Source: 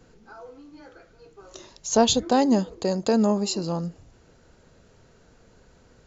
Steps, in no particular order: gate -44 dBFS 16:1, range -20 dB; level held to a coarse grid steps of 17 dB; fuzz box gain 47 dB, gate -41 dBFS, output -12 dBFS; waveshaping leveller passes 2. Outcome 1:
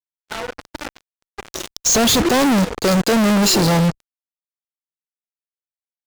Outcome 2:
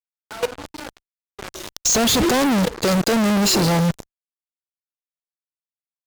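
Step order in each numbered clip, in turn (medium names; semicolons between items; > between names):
fuzz box > level held to a coarse grid > gate > waveshaping leveller; waveshaping leveller > gate > fuzz box > level held to a coarse grid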